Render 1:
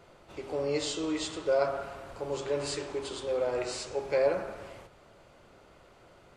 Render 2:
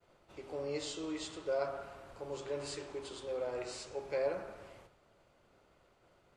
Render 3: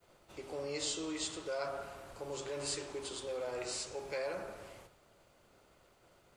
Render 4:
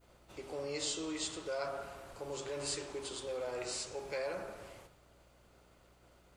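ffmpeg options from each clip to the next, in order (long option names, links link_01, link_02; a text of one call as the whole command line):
ffmpeg -i in.wav -af "agate=range=-33dB:threshold=-53dB:ratio=3:detection=peak,volume=-8dB" out.wav
ffmpeg -i in.wav -filter_complex "[0:a]acrossover=split=890[link_01][link_02];[link_01]alimiter=level_in=12dB:limit=-24dB:level=0:latency=1,volume=-12dB[link_03];[link_03][link_02]amix=inputs=2:normalize=0,crystalizer=i=1.5:c=0,volume=1.5dB" out.wav
ffmpeg -i in.wav -af "aeval=exprs='val(0)+0.000447*(sin(2*PI*60*n/s)+sin(2*PI*2*60*n/s)/2+sin(2*PI*3*60*n/s)/3+sin(2*PI*4*60*n/s)/4+sin(2*PI*5*60*n/s)/5)':channel_layout=same" out.wav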